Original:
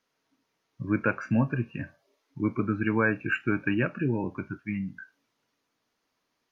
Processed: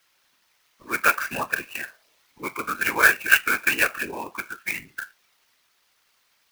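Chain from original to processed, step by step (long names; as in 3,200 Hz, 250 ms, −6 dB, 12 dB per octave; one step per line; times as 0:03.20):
high-pass filter 490 Hz 12 dB per octave
tilt shelving filter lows −9.5 dB
random phases in short frames
converter with an unsteady clock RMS 0.028 ms
level +7.5 dB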